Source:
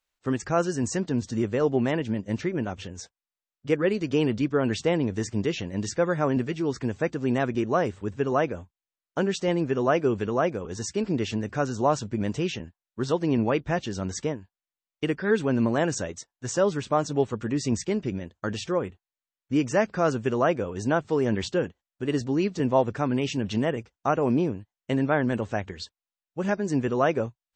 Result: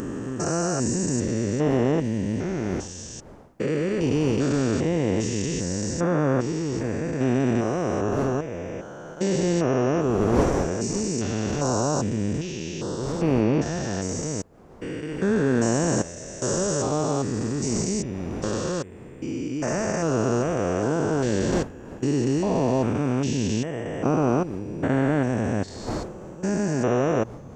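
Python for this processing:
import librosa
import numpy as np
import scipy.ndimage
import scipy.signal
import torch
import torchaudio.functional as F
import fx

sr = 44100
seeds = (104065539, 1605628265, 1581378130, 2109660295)

y = fx.spec_steps(x, sr, hold_ms=400)
y = fx.dmg_wind(y, sr, seeds[0], corner_hz=520.0, level_db=-44.0)
y = fx.high_shelf_res(y, sr, hz=4800.0, db=8.0, q=1.5)
y = y * 10.0 ** (6.0 / 20.0)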